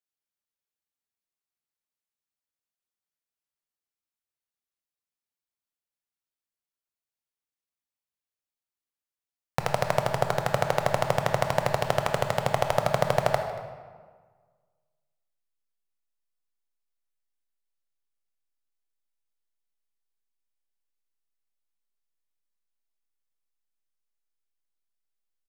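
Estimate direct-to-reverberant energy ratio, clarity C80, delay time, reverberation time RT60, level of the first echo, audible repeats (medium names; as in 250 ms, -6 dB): 5.0 dB, 8.0 dB, 232 ms, 1.6 s, -20.5 dB, 1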